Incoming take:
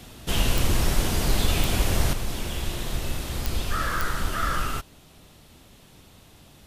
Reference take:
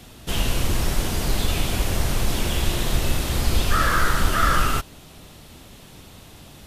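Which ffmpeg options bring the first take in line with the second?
-af "adeclick=t=4,asetnsamples=n=441:p=0,asendcmd='2.13 volume volume 7dB',volume=0dB"

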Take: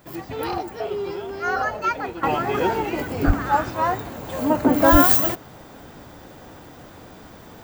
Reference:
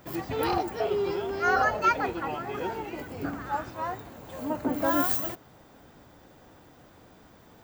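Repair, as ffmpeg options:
-filter_complex "[0:a]asplit=3[a][b][c];[a]afade=t=out:st=3.26:d=0.02[d];[b]highpass=f=140:w=0.5412,highpass=f=140:w=1.3066,afade=t=in:st=3.26:d=0.02,afade=t=out:st=3.38:d=0.02[e];[c]afade=t=in:st=3.38:d=0.02[f];[d][e][f]amix=inputs=3:normalize=0,asplit=3[g][h][i];[g]afade=t=out:st=4.91:d=0.02[j];[h]highpass=f=140:w=0.5412,highpass=f=140:w=1.3066,afade=t=in:st=4.91:d=0.02,afade=t=out:st=5.03:d=0.02[k];[i]afade=t=in:st=5.03:d=0.02[l];[j][k][l]amix=inputs=3:normalize=0,agate=range=-21dB:threshold=-35dB,asetnsamples=n=441:p=0,asendcmd='2.23 volume volume -11dB',volume=0dB"

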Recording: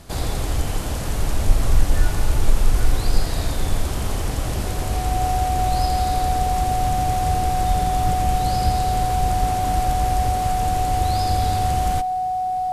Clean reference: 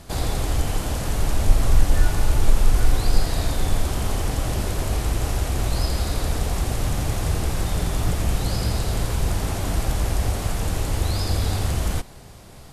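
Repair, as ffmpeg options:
-filter_complex "[0:a]bandreject=f=740:w=30,asplit=3[a][b][c];[a]afade=t=out:st=7.67:d=0.02[d];[b]highpass=f=140:w=0.5412,highpass=f=140:w=1.3066,afade=t=in:st=7.67:d=0.02,afade=t=out:st=7.79:d=0.02[e];[c]afade=t=in:st=7.79:d=0.02[f];[d][e][f]amix=inputs=3:normalize=0,asplit=3[g][h][i];[g]afade=t=out:st=8.64:d=0.02[j];[h]highpass=f=140:w=0.5412,highpass=f=140:w=1.3066,afade=t=in:st=8.64:d=0.02,afade=t=out:st=8.76:d=0.02[k];[i]afade=t=in:st=8.76:d=0.02[l];[j][k][l]amix=inputs=3:normalize=0,asplit=3[m][n][o];[m]afade=t=out:st=9.39:d=0.02[p];[n]highpass=f=140:w=0.5412,highpass=f=140:w=1.3066,afade=t=in:st=9.39:d=0.02,afade=t=out:st=9.51:d=0.02[q];[o]afade=t=in:st=9.51:d=0.02[r];[p][q][r]amix=inputs=3:normalize=0"

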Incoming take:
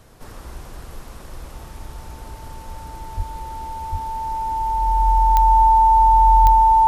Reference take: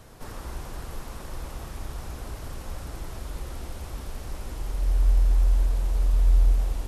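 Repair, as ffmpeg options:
-filter_complex "[0:a]adeclick=t=4,bandreject=f=890:w=30,asplit=3[a][b][c];[a]afade=t=out:st=3.16:d=0.02[d];[b]highpass=f=140:w=0.5412,highpass=f=140:w=1.3066,afade=t=in:st=3.16:d=0.02,afade=t=out:st=3.28:d=0.02[e];[c]afade=t=in:st=3.28:d=0.02[f];[d][e][f]amix=inputs=3:normalize=0,asplit=3[g][h][i];[g]afade=t=out:st=3.91:d=0.02[j];[h]highpass=f=140:w=0.5412,highpass=f=140:w=1.3066,afade=t=in:st=3.91:d=0.02,afade=t=out:st=4.03:d=0.02[k];[i]afade=t=in:st=4.03:d=0.02[l];[j][k][l]amix=inputs=3:normalize=0,asplit=3[m][n][o];[m]afade=t=out:st=6.42:d=0.02[p];[n]highpass=f=140:w=0.5412,highpass=f=140:w=1.3066,afade=t=in:st=6.42:d=0.02,afade=t=out:st=6.54:d=0.02[q];[o]afade=t=in:st=6.54:d=0.02[r];[p][q][r]amix=inputs=3:normalize=0"

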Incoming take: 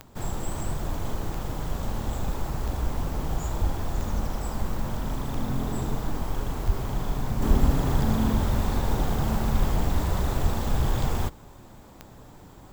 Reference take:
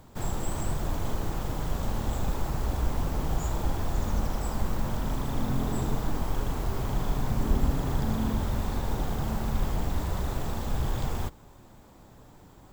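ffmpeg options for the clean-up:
-filter_complex "[0:a]adeclick=t=4,asplit=3[a][b][c];[a]afade=t=out:st=3.6:d=0.02[d];[b]highpass=f=140:w=0.5412,highpass=f=140:w=1.3066,afade=t=in:st=3.6:d=0.02,afade=t=out:st=3.72:d=0.02[e];[c]afade=t=in:st=3.72:d=0.02[f];[d][e][f]amix=inputs=3:normalize=0,asplit=3[g][h][i];[g]afade=t=out:st=6.66:d=0.02[j];[h]highpass=f=140:w=0.5412,highpass=f=140:w=1.3066,afade=t=in:st=6.66:d=0.02,afade=t=out:st=6.78:d=0.02[k];[i]afade=t=in:st=6.78:d=0.02[l];[j][k][l]amix=inputs=3:normalize=0,asplit=3[m][n][o];[m]afade=t=out:st=10.42:d=0.02[p];[n]highpass=f=140:w=0.5412,highpass=f=140:w=1.3066,afade=t=in:st=10.42:d=0.02,afade=t=out:st=10.54:d=0.02[q];[o]afade=t=in:st=10.54:d=0.02[r];[p][q][r]amix=inputs=3:normalize=0,asetnsamples=n=441:p=0,asendcmd='7.42 volume volume -4.5dB',volume=0dB"

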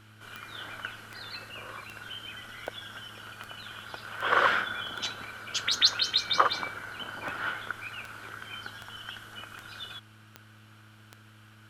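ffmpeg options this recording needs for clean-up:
-af "adeclick=t=4,bandreject=f=107.5:t=h:w=4,bandreject=f=215:t=h:w=4,bandreject=f=322.5:t=h:w=4"

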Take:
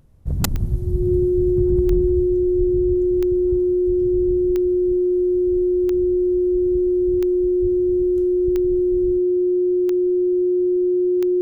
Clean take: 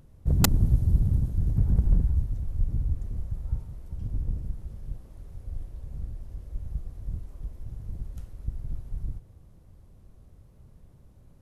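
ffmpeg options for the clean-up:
-filter_complex "[0:a]adeclick=t=4,bandreject=f=360:w=30,asplit=3[a][b][c];[a]afade=t=out:st=3.86:d=0.02[d];[b]highpass=f=140:w=0.5412,highpass=f=140:w=1.3066,afade=t=in:st=3.86:d=0.02,afade=t=out:st=3.98:d=0.02[e];[c]afade=t=in:st=3.98:d=0.02[f];[d][e][f]amix=inputs=3:normalize=0,asplit=3[g][h][i];[g]afade=t=out:st=7.61:d=0.02[j];[h]highpass=f=140:w=0.5412,highpass=f=140:w=1.3066,afade=t=in:st=7.61:d=0.02,afade=t=out:st=7.73:d=0.02[k];[i]afade=t=in:st=7.73:d=0.02[l];[j][k][l]amix=inputs=3:normalize=0"

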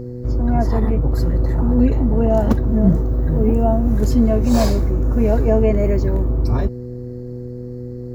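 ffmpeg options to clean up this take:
-af "bandreject=f=123.1:t=h:w=4,bandreject=f=246.2:t=h:w=4,bandreject=f=369.3:t=h:w=4,bandreject=f=492.4:t=h:w=4"

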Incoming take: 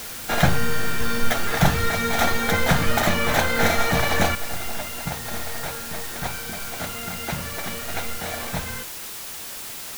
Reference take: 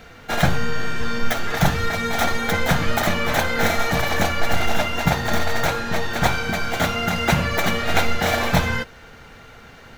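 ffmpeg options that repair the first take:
-af "adeclick=t=4,afwtdn=0.018,asetnsamples=n=441:p=0,asendcmd='4.35 volume volume 11dB',volume=0dB"

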